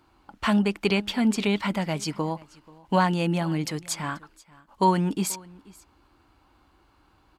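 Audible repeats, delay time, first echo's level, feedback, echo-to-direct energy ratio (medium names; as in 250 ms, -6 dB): 1, 484 ms, -23.0 dB, no regular repeats, -23.0 dB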